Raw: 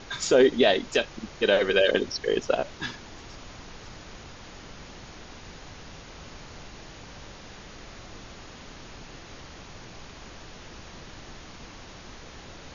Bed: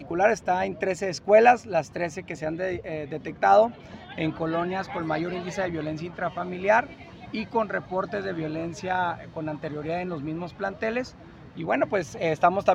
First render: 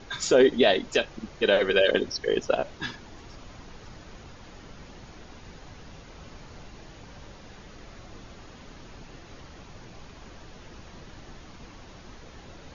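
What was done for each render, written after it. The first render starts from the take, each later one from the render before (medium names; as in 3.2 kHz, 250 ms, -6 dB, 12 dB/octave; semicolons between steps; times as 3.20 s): noise reduction 6 dB, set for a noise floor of -45 dBFS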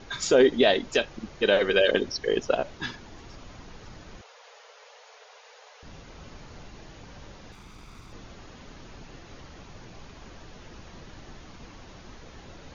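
4.21–5.83 s: Chebyshev high-pass 430 Hz, order 10; 7.52–8.13 s: comb filter that takes the minimum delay 0.84 ms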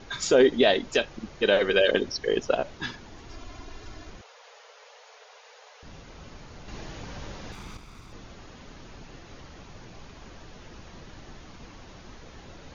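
3.29–4.10 s: comb 2.9 ms, depth 80%; 6.68–7.77 s: gain +6.5 dB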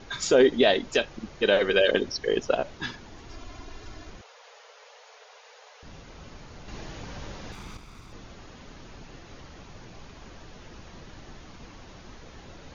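no audible change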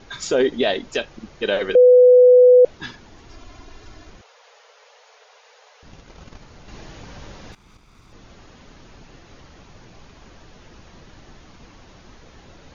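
1.75–2.65 s: bleep 498 Hz -6.5 dBFS; 5.91–6.46 s: transient shaper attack +11 dB, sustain -4 dB; 7.55–8.33 s: fade in, from -14.5 dB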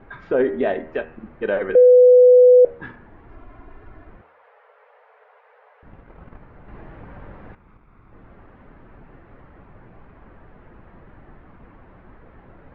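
low-pass 1.9 kHz 24 dB/octave; de-hum 78.94 Hz, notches 38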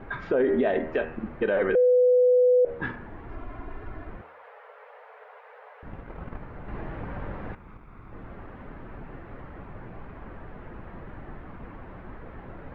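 in parallel at -2.5 dB: compression, threshold -20 dBFS, peak gain reduction 10.5 dB; on the sum: peak limiter -15.5 dBFS, peak gain reduction 11.5 dB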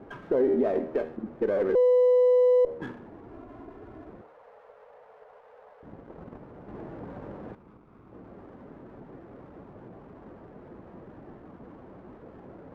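band-pass filter 360 Hz, Q 0.77; sliding maximum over 5 samples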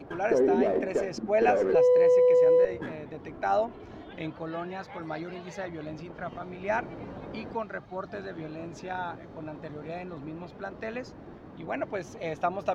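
add bed -8.5 dB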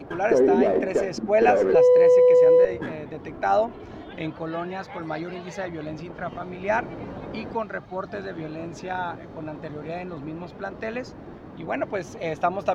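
trim +5 dB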